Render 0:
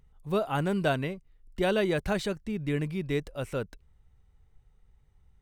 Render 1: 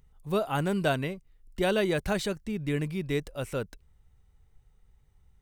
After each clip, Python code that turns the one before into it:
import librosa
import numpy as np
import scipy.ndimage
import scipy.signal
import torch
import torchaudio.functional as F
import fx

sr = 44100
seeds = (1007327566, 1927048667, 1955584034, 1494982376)

y = fx.high_shelf(x, sr, hz=5500.0, db=6.0)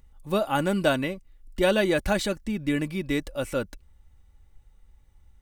y = x + 0.49 * np.pad(x, (int(3.5 * sr / 1000.0), 0))[:len(x)]
y = y * librosa.db_to_amplitude(3.5)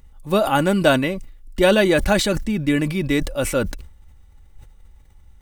y = fx.sustainer(x, sr, db_per_s=78.0)
y = y * librosa.db_to_amplitude(6.5)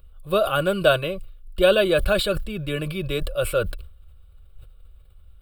y = fx.fixed_phaser(x, sr, hz=1300.0, stages=8)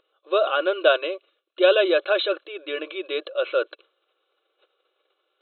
y = fx.brickwall_bandpass(x, sr, low_hz=300.0, high_hz=4200.0)